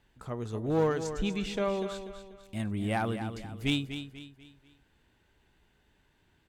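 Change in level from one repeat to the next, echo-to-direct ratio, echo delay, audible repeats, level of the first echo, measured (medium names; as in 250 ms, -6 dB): -8.0 dB, -9.5 dB, 244 ms, 4, -10.0 dB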